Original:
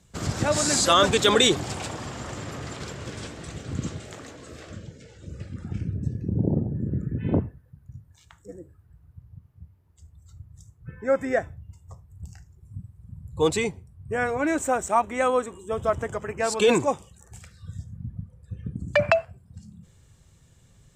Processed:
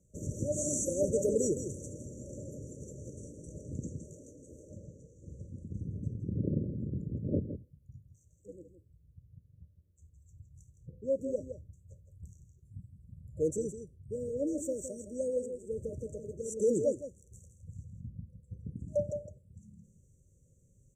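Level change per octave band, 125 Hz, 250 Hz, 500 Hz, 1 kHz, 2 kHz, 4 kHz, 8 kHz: −8.5 dB, −8.5 dB, −8.0 dB, below −40 dB, below −40 dB, below −40 dB, −9.0 dB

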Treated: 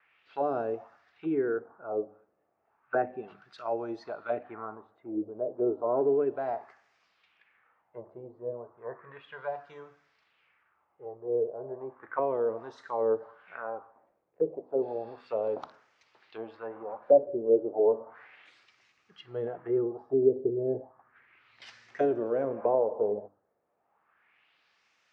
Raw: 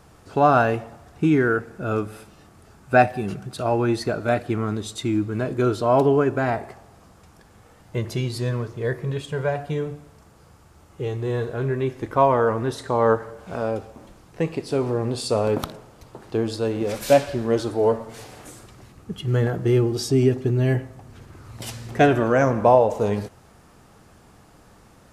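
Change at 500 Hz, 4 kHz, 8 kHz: −6.5 dB, below −20 dB, below −30 dB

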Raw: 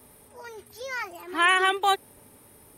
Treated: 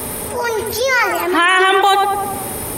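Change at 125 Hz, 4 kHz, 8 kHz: can't be measured, +9.5 dB, +17.0 dB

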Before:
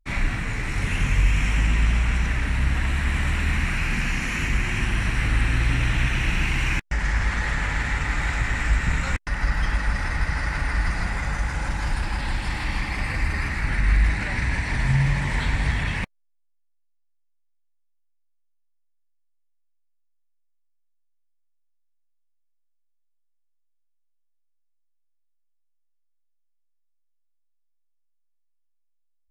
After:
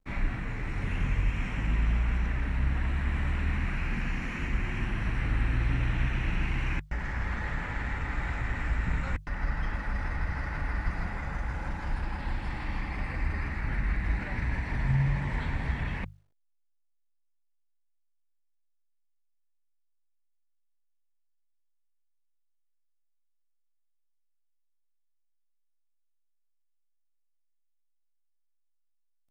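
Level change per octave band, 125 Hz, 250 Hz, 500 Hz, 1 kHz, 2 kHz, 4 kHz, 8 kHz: −6.5 dB, −5.5 dB, −5.5 dB, −7.0 dB, −10.0 dB, −13.5 dB, below −15 dB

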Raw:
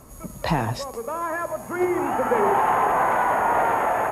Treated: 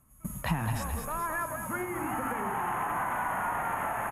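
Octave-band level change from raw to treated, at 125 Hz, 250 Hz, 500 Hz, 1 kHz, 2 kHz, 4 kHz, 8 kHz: −3.5, −8.5, −15.0, −10.5, −6.5, −8.5, −1.5 decibels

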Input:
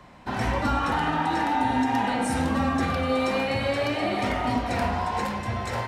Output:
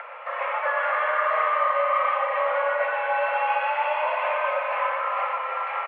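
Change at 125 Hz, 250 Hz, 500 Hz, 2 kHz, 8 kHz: below −40 dB, below −40 dB, +3.0 dB, +4.5 dB, below −40 dB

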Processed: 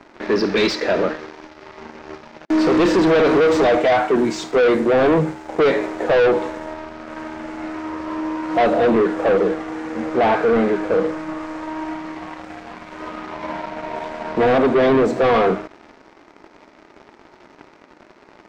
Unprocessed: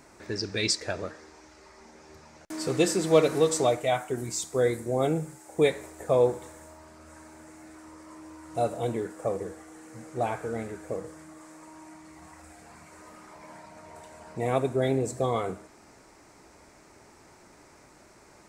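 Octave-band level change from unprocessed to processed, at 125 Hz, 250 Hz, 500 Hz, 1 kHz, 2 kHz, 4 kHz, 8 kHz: +3.5 dB, +13.5 dB, +10.5 dB, +12.5 dB, +14.0 dB, +6.0 dB, can't be measured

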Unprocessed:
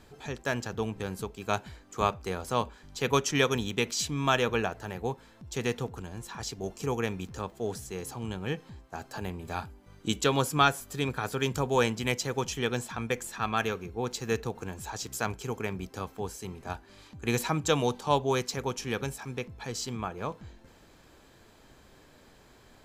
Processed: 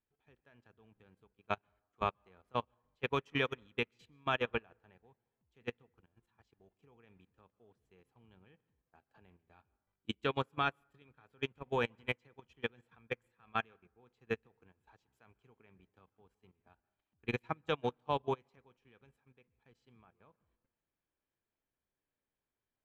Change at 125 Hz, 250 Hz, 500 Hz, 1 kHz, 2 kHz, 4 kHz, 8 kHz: −14.0 dB, −13.0 dB, −10.5 dB, −9.5 dB, −8.0 dB, −12.0 dB, below −30 dB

